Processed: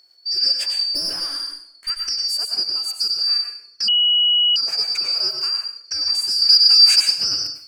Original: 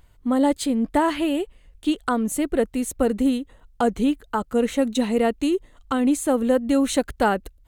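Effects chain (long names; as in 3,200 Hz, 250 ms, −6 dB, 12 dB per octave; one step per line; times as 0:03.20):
band-splitting scrambler in four parts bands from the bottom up 2341
high-pass filter 320 Hz 6 dB per octave
0:00.91–0:01.90: tube saturation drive 15 dB, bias 0.5
0:05.15–0:05.56: centre clipping without the shift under −40.5 dBFS
0:06.36–0:07.00: tilt shelving filter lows −8.5 dB, about 880 Hz
dense smooth reverb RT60 0.53 s, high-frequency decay 1×, pre-delay 85 ms, DRR 3 dB
0:03.88–0:04.56: beep over 2,920 Hz −10.5 dBFS
level −2.5 dB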